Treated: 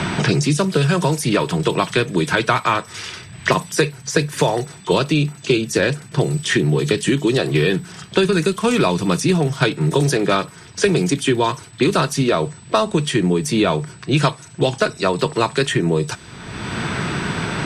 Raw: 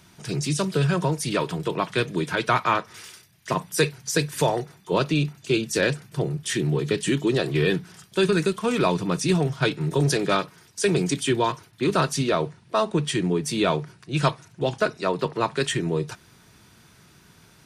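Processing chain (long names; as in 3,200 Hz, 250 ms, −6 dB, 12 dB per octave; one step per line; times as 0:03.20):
steady tone 8,000 Hz −54 dBFS
low-pass that shuts in the quiet parts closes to 2,700 Hz, open at −21 dBFS
multiband upward and downward compressor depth 100%
level +5 dB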